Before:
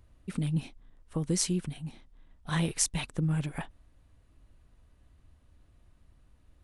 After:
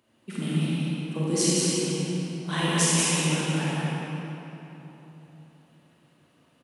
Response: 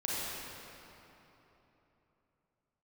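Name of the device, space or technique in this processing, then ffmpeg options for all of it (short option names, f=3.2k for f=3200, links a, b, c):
PA in a hall: -filter_complex "[0:a]highpass=f=170:w=0.5412,highpass=f=170:w=1.3066,equalizer=f=2.9k:t=o:w=0.31:g=7,aecho=1:1:187:0.631[a];[1:a]atrim=start_sample=2205[b];[a][b]afir=irnorm=-1:irlink=0,volume=2dB"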